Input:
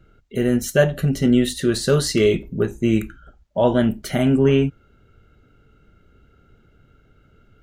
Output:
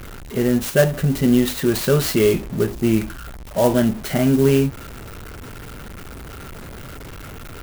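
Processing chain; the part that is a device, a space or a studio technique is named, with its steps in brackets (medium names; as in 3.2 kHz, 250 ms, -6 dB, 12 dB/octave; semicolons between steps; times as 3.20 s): early CD player with a faulty converter (jump at every zero crossing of -30 dBFS; sampling jitter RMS 0.042 ms)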